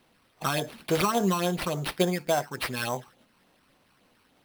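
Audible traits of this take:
phaser sweep stages 12, 3.5 Hz, lowest notch 560–2,700 Hz
aliases and images of a low sample rate 6,900 Hz, jitter 0%

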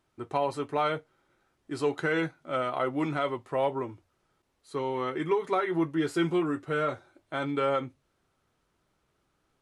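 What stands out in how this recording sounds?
background noise floor −75 dBFS
spectral slope −4.5 dB per octave

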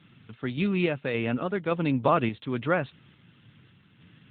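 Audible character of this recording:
sample-and-hold tremolo
AMR narrowband

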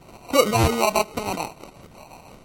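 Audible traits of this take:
tremolo saw up 5.9 Hz, depth 55%
phaser sweep stages 8, 0.82 Hz, lowest notch 460–1,900 Hz
aliases and images of a low sample rate 1,700 Hz, jitter 0%
MP3

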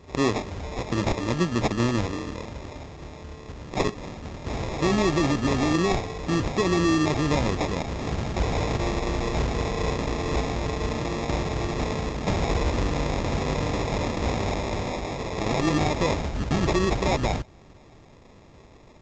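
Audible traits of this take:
aliases and images of a low sample rate 1,500 Hz, jitter 0%
A-law companding

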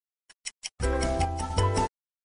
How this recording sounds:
a quantiser's noise floor 8 bits, dither none
sample-and-hold tremolo 4 Hz, depth 55%
MP3

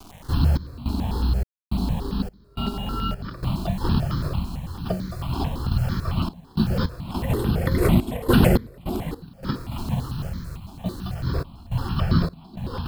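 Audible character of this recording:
a quantiser's noise floor 8 bits, dither none
sample-and-hold tremolo 3.5 Hz, depth 100%
notches that jump at a steady rate 9 Hz 510–2,700 Hz

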